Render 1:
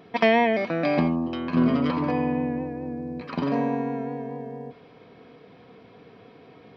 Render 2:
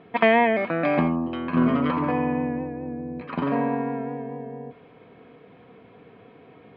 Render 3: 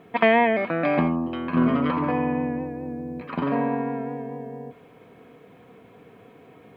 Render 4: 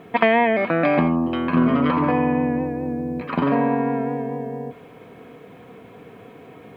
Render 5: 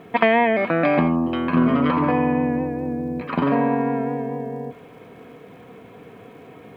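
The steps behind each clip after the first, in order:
LPF 3200 Hz 24 dB/oct; dynamic EQ 1300 Hz, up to +5 dB, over -39 dBFS, Q 1.2
requantised 12-bit, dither none
compressor 2:1, threshold -23 dBFS, peak gain reduction 6.5 dB; gain +6.5 dB
crackle 74/s -51 dBFS

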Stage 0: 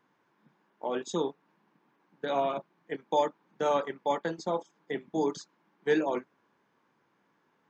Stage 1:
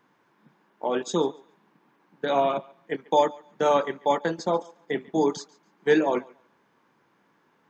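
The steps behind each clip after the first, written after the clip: thinning echo 0.141 s, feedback 23%, high-pass 420 Hz, level -22.5 dB; gain +6 dB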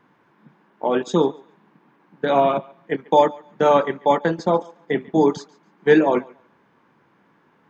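tone controls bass +4 dB, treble -9 dB; gain +5.5 dB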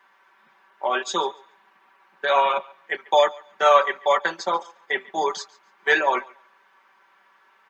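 HPF 990 Hz 12 dB/oct; comb 5.2 ms, depth 86%; gain +3.5 dB

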